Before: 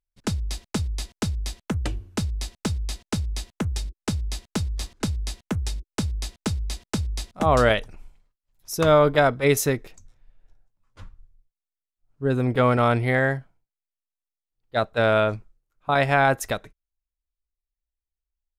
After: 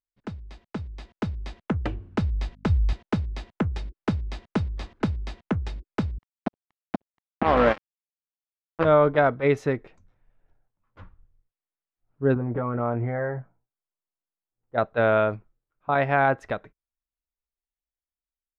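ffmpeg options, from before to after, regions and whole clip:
-filter_complex "[0:a]asettb=1/sr,asplit=3[a][b][c];[a]atrim=end=2.034[d];[b]atrim=start=2.03:end=2.93,asetpts=PTS-STARTPTS,afade=t=in:d=0.004:c=qsin,afade=t=out:st=0.896:d=0.004:c=qsin,asubboost=boost=11:cutoff=120,aeval=exprs='val(0)+0.00316*(sin(2*PI*50*n/s)+sin(2*PI*2*50*n/s)/2+sin(2*PI*3*50*n/s)/3+sin(2*PI*4*50*n/s)/4+sin(2*PI*5*50*n/s)/5)':c=same[e];[c]atrim=start=2.926[f];[d][e]acrossfade=d=0.004:c1=hsin:c2=qsin[g];[g][f]acrossfade=d=0.004:c1=qsin:c2=hsin,asettb=1/sr,asplit=3[h][i][j];[h]atrim=end=6.184[k];[i]atrim=start=6.18:end=8.85,asetpts=PTS-STARTPTS,afade=t=in:d=0.004:c=qsin,afade=t=out:st=2.666:d=0.004:c=qsin,lowpass=f=1.3k:p=1,aecho=1:1:3.8:0.5,atrim=end_sample=117747,acrusher=bits=2:mix=0:aa=0.5[l];[j]atrim=start=8.846[m];[k][l]acrossfade=d=0.004:c1=hsin:c2=qsin[n];[n][m]acrossfade=d=0.004:c1=qsin:c2=hsin,asettb=1/sr,asplit=3[o][p][q];[o]atrim=end=12.344[r];[p]atrim=start=12.34:end=14.78,asetpts=PTS-STARTPTS,afade=t=in:d=0.004:c=qsin,afade=t=out:st=2.436:d=0.004:c=qsin,lowpass=1.4k,acompressor=threshold=-25dB:ratio=12:attack=3.2:release=140:knee=1:detection=peak,asplit=2[s][t];[t]adelay=17,volume=-6dB[u];[s][u]amix=inputs=2:normalize=0,atrim=end_sample=107604[v];[q]atrim=start=14.776[w];[r][v]acrossfade=d=0.004:c1=hsin:c2=qsin[x];[x][w]acrossfade=d=0.004:c1=qsin:c2=hsin,lowpass=2k,lowshelf=f=69:g=-10.5,dynaudnorm=f=490:g=5:m=11dB,volume=-7.5dB"

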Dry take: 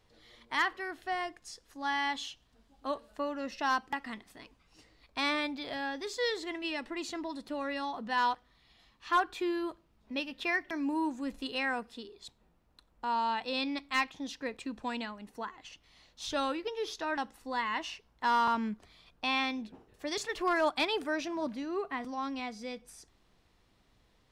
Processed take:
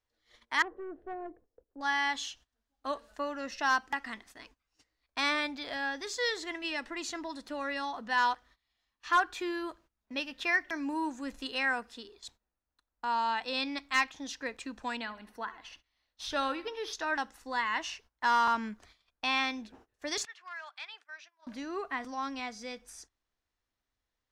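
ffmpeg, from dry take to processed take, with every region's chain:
-filter_complex "[0:a]asettb=1/sr,asplit=3[a][b][c];[a]atrim=end=0.624[d];[b]atrim=start=0.62:end=1.81,asetpts=PTS-STARTPTS,afade=t=in:d=0.004:c=qsin,afade=t=out:st=1.186:d=0.004:c=qsin,lowpass=f=460:t=q:w=3,aeval=exprs='(tanh(39.8*val(0)+0.25)-tanh(0.25))/39.8':c=same[e];[c]atrim=start=1.806[f];[d][e]acrossfade=d=0.004:c1=hsin:c2=qsin[g];[g][f]acrossfade=d=0.004:c1=qsin:c2=hsin,asettb=1/sr,asplit=3[h][i][j];[h]atrim=end=14.974[k];[i]atrim=start=14.97:end=16.93,asetpts=PTS-STARTPTS,afade=t=in:d=0.004:c=qsin,afade=t=out:st=1.956:d=0.004:c=qsin,equalizer=f=7k:t=o:w=0.49:g=-12.5,aecho=1:1:70|140|210|280:0.126|0.0617|0.0302|0.0148,atrim=end_sample=86436[l];[j]atrim=start=16.926[m];[k][l]acrossfade=d=0.004:c1=hsin:c2=qsin[n];[n][m]acrossfade=d=0.004:c1=qsin:c2=hsin,asettb=1/sr,asplit=3[o][p][q];[o]atrim=end=20.254[r];[p]atrim=start=20.25:end=21.47,asetpts=PTS-STARTPTS,afade=t=in:d=0.004:c=qsin,afade=t=out:st=1.216:d=0.004:c=qsin,highpass=710,lowpass=2.4k,aderivative[s];[q]atrim=start=21.466[t];[r][s]acrossfade=d=0.004:c1=hsin:c2=qsin[u];[u][t]acrossfade=d=0.004:c1=qsin:c2=hsin,agate=range=-19dB:threshold=-56dB:ratio=16:detection=peak,equalizer=f=160:t=o:w=0.67:g=-11,equalizer=f=400:t=o:w=0.67:g=-3,equalizer=f=1.6k:t=o:w=0.67:g=5,equalizer=f=6.3k:t=o:w=0.67:g=6"

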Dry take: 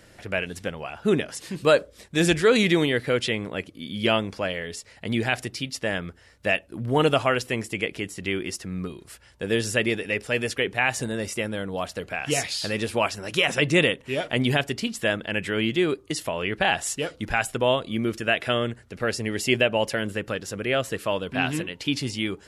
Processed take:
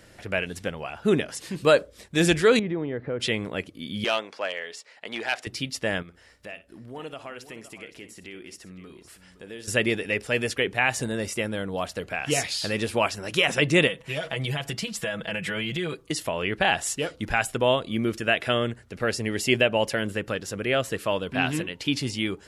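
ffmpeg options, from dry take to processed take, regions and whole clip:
-filter_complex "[0:a]asettb=1/sr,asplit=3[a][b][c];[a]atrim=end=2.594[d];[b]atrim=start=2.59:end=3.2,asetpts=PTS-STARTPTS,afade=t=in:d=0.004:c=qsin,afade=t=out:st=0.606:d=0.004:c=qsin,lowpass=1.1k,acompressor=threshold=-30dB:ratio=2:attack=3.2:release=140:knee=1:detection=peak[e];[c]atrim=start=3.196[f];[d][e]acrossfade=d=0.004:c1=hsin:c2=qsin[g];[g][f]acrossfade=d=0.004:c1=qsin:c2=hsin,asettb=1/sr,asplit=3[h][i][j];[h]atrim=end=4.044[k];[i]atrim=start=4.04:end=5.47,asetpts=PTS-STARTPTS,afade=t=in:d=0.004:c=qsin,afade=t=out:st=1.426:d=0.004:c=qsin,aeval=exprs='clip(val(0),-1,0.141)':c=same,highpass=540,adynamicsmooth=sensitivity=1.5:basefreq=6.8k[l];[j]atrim=start=5.466[m];[k][l]acrossfade=d=0.004:c1=hsin:c2=qsin[n];[n][m]acrossfade=d=0.004:c1=qsin:c2=hsin,asettb=1/sr,asplit=3[o][p][q];[o]atrim=end=6.024[r];[p]atrim=start=6.02:end=9.68,asetpts=PTS-STARTPTS,afade=t=in:d=0.004:c=qsin,afade=t=out:st=3.656:d=0.004:c=qsin,equalizer=f=110:w=1.3:g=-7.5,acompressor=threshold=-49dB:ratio=2:attack=3.2:release=140:knee=1:detection=peak,aecho=1:1:58|515:0.188|0.211,atrim=end_sample=161406[s];[q]atrim=start=9.676[t];[r][s]acrossfade=d=0.004:c1=hsin:c2=qsin[u];[u][t]acrossfade=d=0.004:c1=qsin:c2=hsin,asettb=1/sr,asplit=3[v][w][x];[v]atrim=end=13.874[y];[w]atrim=start=13.87:end=16.09,asetpts=PTS-STARTPTS,afade=t=in:d=0.004:c=qsin,afade=t=out:st=2.216:d=0.004:c=qsin,equalizer=f=320:t=o:w=0.27:g=-13.5,aecho=1:1:6.1:0.84,atrim=end_sample=97902,acompressor=threshold=-25dB:ratio=6:attack=3.2:release=140:knee=1:detection=peak[z];[x]atrim=start=16.086[aa];[y][z]acrossfade=d=0.004:c1=hsin:c2=qsin[ab];[ab][aa]acrossfade=d=0.004:c1=qsin:c2=hsin"

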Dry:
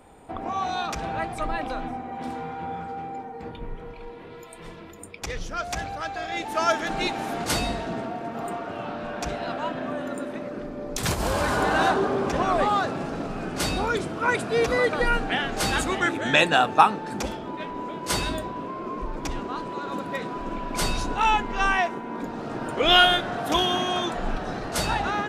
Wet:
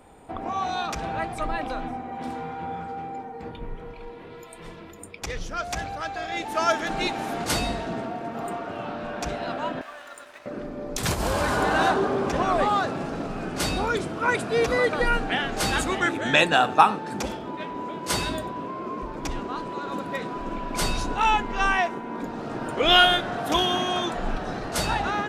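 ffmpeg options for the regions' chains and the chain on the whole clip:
-filter_complex "[0:a]asettb=1/sr,asplit=3[a][b][c];[a]atrim=end=9.814[d];[b]atrim=start=9.81:end=10.46,asetpts=PTS-STARTPTS,afade=t=in:d=0.004:c=qsin,afade=t=out:st=0.646:d=0.004:c=qsin,highpass=1.1k,aeval=exprs='sgn(val(0))*max(abs(val(0))-0.00282,0)':c=same[e];[c]atrim=start=10.456[f];[d][e]acrossfade=d=0.004:c1=hsin:c2=qsin[g];[g][f]acrossfade=d=0.004:c1=qsin:c2=hsin,asettb=1/sr,asplit=3[h][i][j];[h]atrim=end=16.514[k];[i]atrim=start=16.51:end=19.19,asetpts=PTS-STARTPTS,afade=t=in:d=0.004:c=qsin,afade=t=out:st=2.676:d=0.004:c=qsin,highpass=52,aecho=1:1:93:0.112,atrim=end_sample=118188[l];[j]atrim=start=19.186[m];[k][l]acrossfade=d=0.004:c1=hsin:c2=qsin[n];[n][m]acrossfade=d=0.004:c1=qsin:c2=hsin"

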